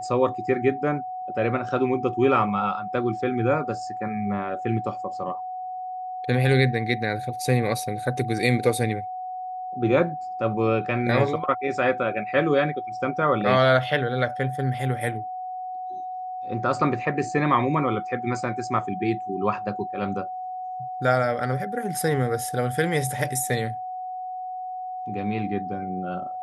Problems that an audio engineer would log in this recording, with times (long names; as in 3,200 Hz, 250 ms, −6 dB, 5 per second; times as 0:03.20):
whistle 740 Hz −30 dBFS